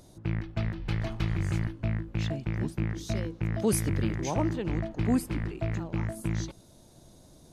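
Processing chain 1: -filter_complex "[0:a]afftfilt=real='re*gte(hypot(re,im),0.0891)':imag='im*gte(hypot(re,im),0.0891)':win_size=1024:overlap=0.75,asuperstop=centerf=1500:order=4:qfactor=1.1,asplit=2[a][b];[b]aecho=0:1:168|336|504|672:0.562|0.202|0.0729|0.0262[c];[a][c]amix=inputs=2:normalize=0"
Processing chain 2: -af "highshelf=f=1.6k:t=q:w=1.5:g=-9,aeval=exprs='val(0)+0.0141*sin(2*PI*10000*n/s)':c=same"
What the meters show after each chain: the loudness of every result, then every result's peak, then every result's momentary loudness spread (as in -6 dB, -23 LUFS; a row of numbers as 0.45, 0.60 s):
-30.5, -30.5 LUFS; -14.5, -14.5 dBFS; 5, 8 LU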